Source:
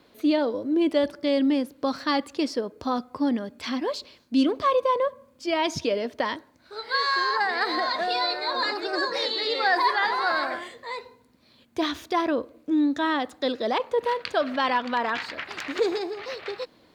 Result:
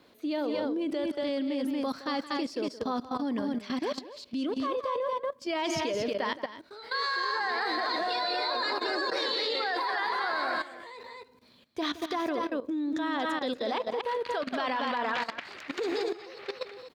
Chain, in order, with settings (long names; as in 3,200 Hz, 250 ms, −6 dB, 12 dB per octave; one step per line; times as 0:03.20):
low-shelf EQ 80 Hz −5.5 dB
loudspeakers that aren't time-aligned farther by 58 metres −12 dB, 80 metres −6 dB
output level in coarse steps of 15 dB